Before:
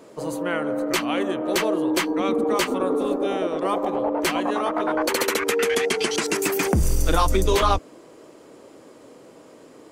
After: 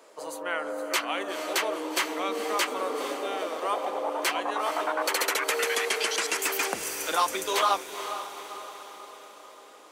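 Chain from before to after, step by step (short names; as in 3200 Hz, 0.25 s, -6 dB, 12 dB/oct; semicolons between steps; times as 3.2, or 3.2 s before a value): HPF 660 Hz 12 dB/oct; on a send: diffused feedback echo 0.47 s, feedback 55%, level -10 dB; on the sum: gain -2 dB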